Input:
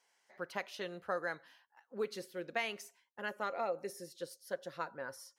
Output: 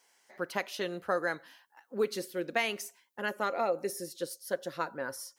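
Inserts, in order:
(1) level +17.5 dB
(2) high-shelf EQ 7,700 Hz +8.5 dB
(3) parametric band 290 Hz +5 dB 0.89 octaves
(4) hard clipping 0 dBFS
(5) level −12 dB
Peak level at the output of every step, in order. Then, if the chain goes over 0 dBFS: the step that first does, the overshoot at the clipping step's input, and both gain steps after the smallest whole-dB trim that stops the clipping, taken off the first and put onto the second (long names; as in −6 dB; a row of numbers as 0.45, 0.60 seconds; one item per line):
−5.0, −4.5, −4.5, −4.5, −16.5 dBFS
no step passes full scale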